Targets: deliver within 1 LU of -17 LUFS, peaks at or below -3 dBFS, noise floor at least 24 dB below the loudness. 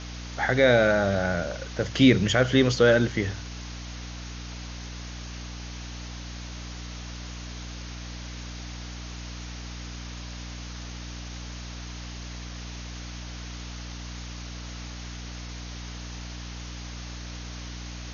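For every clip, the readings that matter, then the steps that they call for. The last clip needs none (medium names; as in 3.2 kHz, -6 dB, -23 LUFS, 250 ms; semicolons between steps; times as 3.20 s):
hum 60 Hz; highest harmonic 300 Hz; hum level -36 dBFS; noise floor -38 dBFS; noise floor target -53 dBFS; loudness -29.0 LUFS; peak level -6.0 dBFS; loudness target -17.0 LUFS
-> de-hum 60 Hz, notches 5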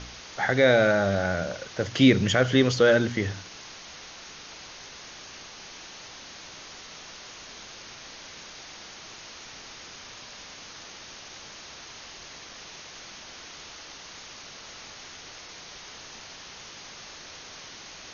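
hum not found; noise floor -45 dBFS; noise floor target -47 dBFS
-> noise reduction 6 dB, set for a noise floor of -45 dBFS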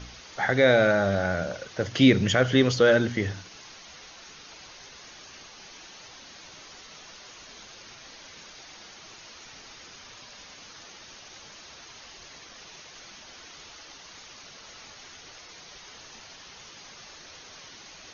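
noise floor -48 dBFS; loudness -22.5 LUFS; peak level -6.0 dBFS; loudness target -17.0 LUFS
-> trim +5.5 dB; peak limiter -3 dBFS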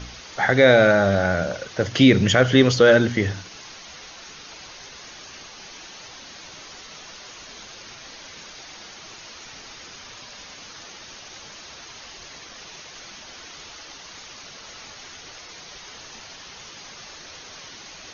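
loudness -17.5 LUFS; peak level -3.0 dBFS; noise floor -42 dBFS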